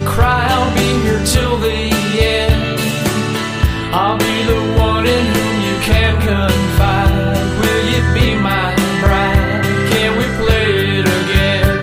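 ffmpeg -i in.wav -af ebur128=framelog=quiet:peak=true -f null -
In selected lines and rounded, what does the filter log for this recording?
Integrated loudness:
  I:         -13.9 LUFS
  Threshold: -23.9 LUFS
Loudness range:
  LRA:         1.4 LU
  Threshold: -34.0 LUFS
  LRA low:   -14.9 LUFS
  LRA high:  -13.5 LUFS
True peak:
  Peak:       -1.7 dBFS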